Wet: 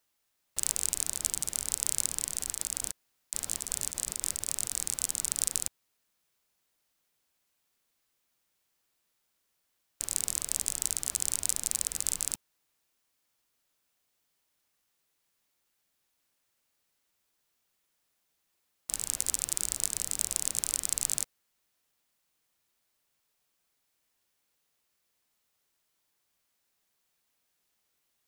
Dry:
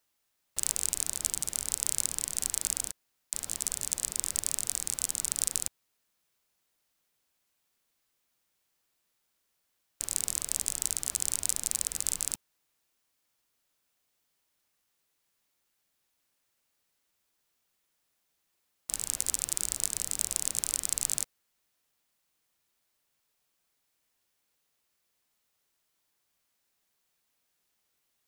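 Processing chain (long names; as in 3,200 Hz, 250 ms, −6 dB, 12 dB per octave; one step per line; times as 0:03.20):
0:02.37–0:04.85: compressor whose output falls as the input rises −34 dBFS, ratio −1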